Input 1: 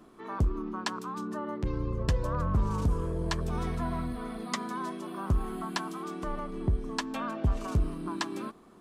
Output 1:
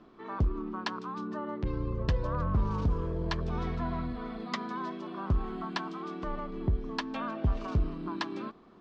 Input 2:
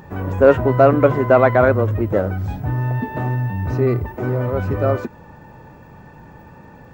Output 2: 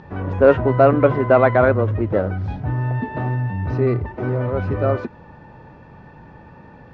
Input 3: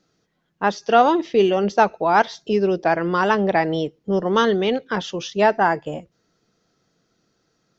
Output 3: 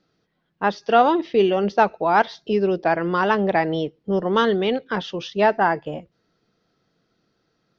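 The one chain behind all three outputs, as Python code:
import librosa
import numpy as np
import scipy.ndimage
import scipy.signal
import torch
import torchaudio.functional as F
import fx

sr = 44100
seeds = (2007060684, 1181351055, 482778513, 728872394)

y = scipy.signal.sosfilt(scipy.signal.butter(4, 4900.0, 'lowpass', fs=sr, output='sos'), x)
y = F.gain(torch.from_numpy(y), -1.0).numpy()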